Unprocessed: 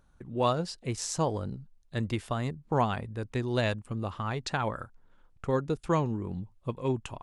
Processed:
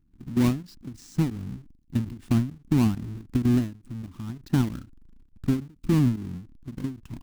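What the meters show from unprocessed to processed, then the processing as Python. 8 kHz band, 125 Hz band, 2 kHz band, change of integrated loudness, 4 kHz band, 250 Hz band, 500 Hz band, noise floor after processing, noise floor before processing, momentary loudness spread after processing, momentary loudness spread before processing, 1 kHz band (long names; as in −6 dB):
−5.0 dB, +6.0 dB, −5.0 dB, +5.0 dB, −4.0 dB, +9.0 dB, −7.0 dB, −59 dBFS, −63 dBFS, 16 LU, 10 LU, −9.5 dB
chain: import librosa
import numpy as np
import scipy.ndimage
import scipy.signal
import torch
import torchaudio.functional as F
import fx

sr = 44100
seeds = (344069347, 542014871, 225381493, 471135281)

y = fx.halfwave_hold(x, sr)
y = fx.low_shelf_res(y, sr, hz=380.0, db=11.0, q=3.0)
y = fx.level_steps(y, sr, step_db=15)
y = fx.end_taper(y, sr, db_per_s=150.0)
y = F.gain(torch.from_numpy(y), -4.0).numpy()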